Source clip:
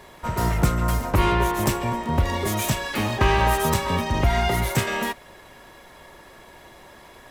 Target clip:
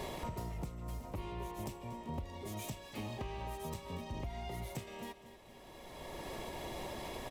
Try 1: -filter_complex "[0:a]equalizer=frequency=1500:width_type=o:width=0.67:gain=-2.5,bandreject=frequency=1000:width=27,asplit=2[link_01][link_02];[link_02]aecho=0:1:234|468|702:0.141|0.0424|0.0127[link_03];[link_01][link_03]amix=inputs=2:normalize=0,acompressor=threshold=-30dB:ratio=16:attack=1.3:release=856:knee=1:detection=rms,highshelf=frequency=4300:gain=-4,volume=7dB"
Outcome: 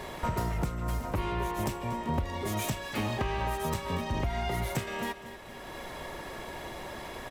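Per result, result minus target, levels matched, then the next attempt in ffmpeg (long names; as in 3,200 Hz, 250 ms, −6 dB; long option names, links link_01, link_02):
downward compressor: peak gain reduction −10.5 dB; 2,000 Hz band +2.5 dB
-filter_complex "[0:a]equalizer=frequency=1500:width_type=o:width=0.67:gain=-2.5,bandreject=frequency=1000:width=27,asplit=2[link_01][link_02];[link_02]aecho=0:1:234|468|702:0.141|0.0424|0.0127[link_03];[link_01][link_03]amix=inputs=2:normalize=0,acompressor=threshold=-41.5dB:ratio=16:attack=1.3:release=856:knee=1:detection=rms,highshelf=frequency=4300:gain=-4,volume=7dB"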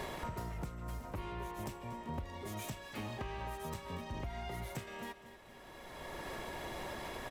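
2,000 Hz band +4.0 dB
-filter_complex "[0:a]equalizer=frequency=1500:width_type=o:width=0.67:gain=-12.5,bandreject=frequency=1000:width=27,asplit=2[link_01][link_02];[link_02]aecho=0:1:234|468|702:0.141|0.0424|0.0127[link_03];[link_01][link_03]amix=inputs=2:normalize=0,acompressor=threshold=-41.5dB:ratio=16:attack=1.3:release=856:knee=1:detection=rms,highshelf=frequency=4300:gain=-4,volume=7dB"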